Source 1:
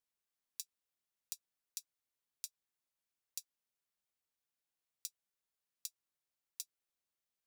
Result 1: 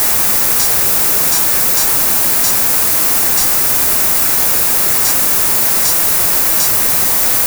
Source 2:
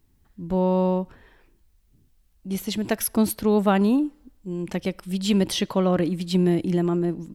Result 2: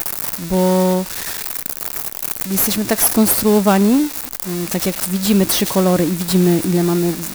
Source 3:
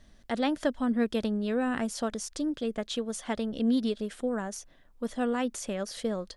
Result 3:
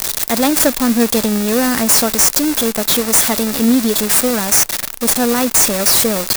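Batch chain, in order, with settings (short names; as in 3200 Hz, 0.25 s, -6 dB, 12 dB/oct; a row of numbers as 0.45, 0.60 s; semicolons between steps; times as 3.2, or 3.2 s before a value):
switching spikes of -16.5 dBFS; notch 3100 Hz, Q 12; modulation noise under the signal 19 dB; in parallel at -11.5 dB: sample-rate reducer 4000 Hz, jitter 0%; on the sum: normalise peaks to -1.5 dBFS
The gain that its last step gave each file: +9.5, +4.5, +11.0 dB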